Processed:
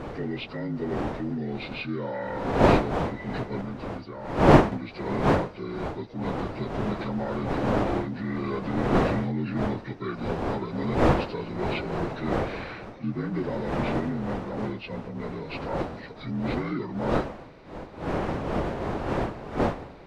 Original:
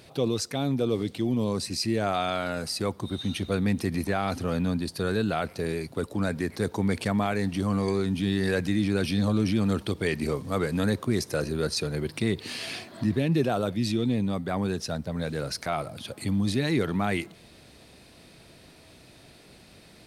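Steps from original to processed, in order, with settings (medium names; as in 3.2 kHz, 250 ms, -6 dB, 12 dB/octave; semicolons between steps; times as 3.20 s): frequency axis rescaled in octaves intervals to 77%; wind noise 630 Hz -24 dBFS; 3.61–4.72 s: upward expansion 1.5:1, over -19 dBFS; trim -4 dB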